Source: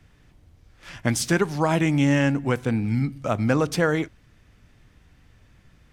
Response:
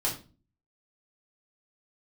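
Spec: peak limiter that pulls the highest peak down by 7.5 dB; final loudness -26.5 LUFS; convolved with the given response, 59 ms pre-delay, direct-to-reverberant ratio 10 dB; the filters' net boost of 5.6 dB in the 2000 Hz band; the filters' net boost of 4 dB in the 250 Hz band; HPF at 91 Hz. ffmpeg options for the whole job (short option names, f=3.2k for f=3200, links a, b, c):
-filter_complex "[0:a]highpass=91,equalizer=f=250:t=o:g=5,equalizer=f=2k:t=o:g=7,alimiter=limit=-10dB:level=0:latency=1,asplit=2[a][b];[1:a]atrim=start_sample=2205,adelay=59[c];[b][c]afir=irnorm=-1:irlink=0,volume=-17dB[d];[a][d]amix=inputs=2:normalize=0,volume=-4.5dB"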